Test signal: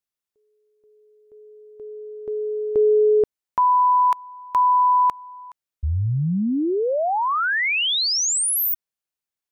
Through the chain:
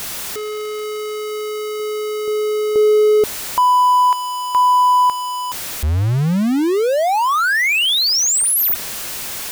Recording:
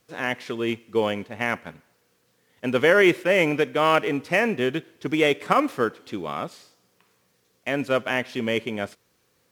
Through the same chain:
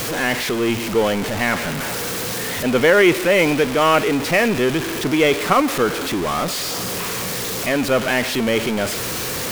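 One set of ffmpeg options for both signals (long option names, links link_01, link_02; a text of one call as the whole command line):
ffmpeg -i in.wav -af "aeval=exprs='val(0)+0.5*0.0891*sgn(val(0))':channel_layout=same,volume=2dB" out.wav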